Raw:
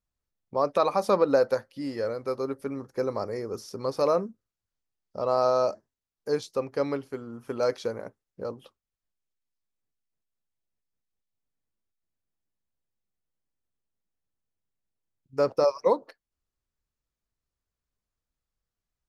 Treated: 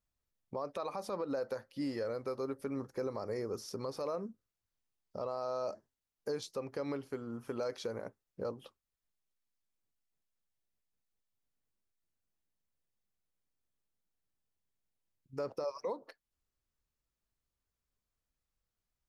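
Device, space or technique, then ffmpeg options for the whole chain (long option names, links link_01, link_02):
stacked limiters: -af "alimiter=limit=-16.5dB:level=0:latency=1:release=364,alimiter=limit=-23dB:level=0:latency=1:release=80,alimiter=level_in=3dB:limit=-24dB:level=0:latency=1:release=173,volume=-3dB,volume=-1.5dB"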